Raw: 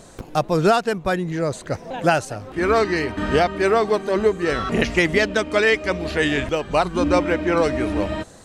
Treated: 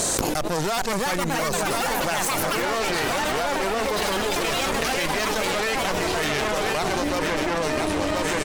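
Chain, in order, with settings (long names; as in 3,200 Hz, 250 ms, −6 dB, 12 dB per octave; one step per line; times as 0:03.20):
bass and treble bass −7 dB, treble +10 dB
harmonic generator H 8 −14 dB, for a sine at −3 dBFS
repeating echo 1,028 ms, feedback 39%, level −10 dB
delay with pitch and tempo change per echo 492 ms, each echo +4 semitones, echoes 3
envelope flattener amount 100%
level −13.5 dB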